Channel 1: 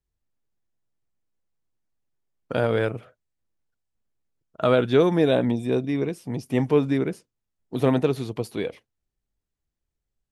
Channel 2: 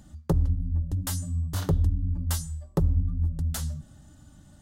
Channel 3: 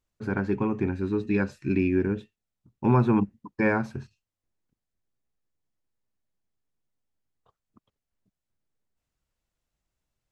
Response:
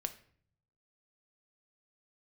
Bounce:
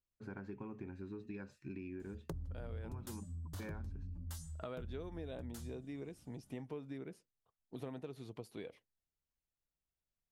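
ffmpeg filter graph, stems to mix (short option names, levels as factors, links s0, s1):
-filter_complex "[0:a]volume=0.158[s0];[1:a]dynaudnorm=f=130:g=11:m=2,asoftclip=type=tanh:threshold=0.2,adelay=2000,volume=0.422,afade=t=out:st=2.85:d=0.25:silence=0.334965[s1];[2:a]acompressor=threshold=0.0562:ratio=2,volume=0.178[s2];[s0][s1][s2]amix=inputs=3:normalize=0,acompressor=threshold=0.00794:ratio=6"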